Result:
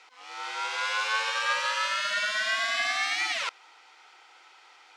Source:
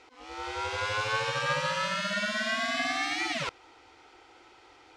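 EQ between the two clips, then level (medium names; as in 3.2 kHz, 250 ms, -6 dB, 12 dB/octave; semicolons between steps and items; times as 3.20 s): high-pass 950 Hz 12 dB/octave; +3.5 dB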